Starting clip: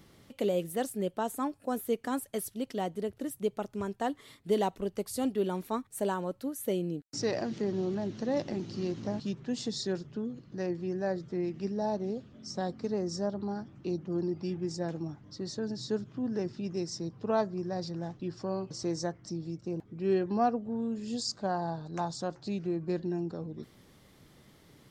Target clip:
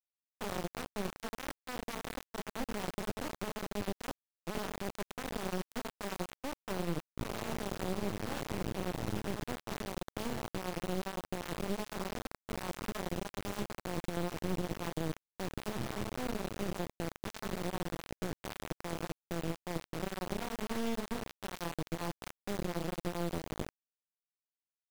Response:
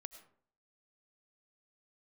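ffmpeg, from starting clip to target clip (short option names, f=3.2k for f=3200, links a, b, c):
-filter_complex "[0:a]aresample=11025,aeval=exprs='sgn(val(0))*max(abs(val(0))-0.00168,0)':c=same,aresample=44100,lowpass=f=2k:w=0.5412,lowpass=f=2k:w=1.3066,equalizer=f=110:w=0.71:g=7.5,alimiter=limit=-22dB:level=0:latency=1:release=355,asoftclip=type=tanh:threshold=-38dB,lowshelf=f=280:g=8,asplit=2[a][b];[b]adelay=87,lowpass=f=1.1k:p=1,volume=-8.5dB,asplit=2[c][d];[d]adelay=87,lowpass=f=1.1k:p=1,volume=0.22,asplit=2[e][f];[f]adelay=87,lowpass=f=1.1k:p=1,volume=0.22[g];[c][e][g]amix=inputs=3:normalize=0[h];[a][h]amix=inputs=2:normalize=0,aeval=exprs='0.0473*(cos(1*acos(clip(val(0)/0.0473,-1,1)))-cos(1*PI/2))+0.0168*(cos(2*acos(clip(val(0)/0.0473,-1,1)))-cos(2*PI/2))+0.0075*(cos(5*acos(clip(val(0)/0.0473,-1,1)))-cos(5*PI/2))+0.0119*(cos(8*acos(clip(val(0)/0.0473,-1,1)))-cos(8*PI/2))':c=same,bandreject=f=218.7:t=h:w=4,bandreject=f=437.4:t=h:w=4,bandreject=f=656.1:t=h:w=4,bandreject=f=874.8:t=h:w=4,bandreject=f=1.0935k:t=h:w=4,bandreject=f=1.3122k:t=h:w=4,bandreject=f=1.5309k:t=h:w=4,bandreject=f=1.7496k:t=h:w=4,bandreject=f=1.9683k:t=h:w=4,bandreject=f=2.187k:t=h:w=4,bandreject=f=2.4057k:t=h:w=4,bandreject=f=2.6244k:t=h:w=4,acrusher=bits=4:dc=4:mix=0:aa=0.000001,acompressor=threshold=-41dB:ratio=2,agate=range=-13dB:threshold=-58dB:ratio=16:detection=peak,volume=7.5dB"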